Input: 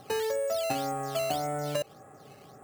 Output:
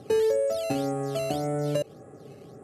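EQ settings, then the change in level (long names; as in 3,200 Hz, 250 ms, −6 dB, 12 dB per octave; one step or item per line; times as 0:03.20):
high-pass filter 52 Hz
linear-phase brick-wall low-pass 13,000 Hz
low shelf with overshoot 610 Hz +8.5 dB, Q 1.5
−2.0 dB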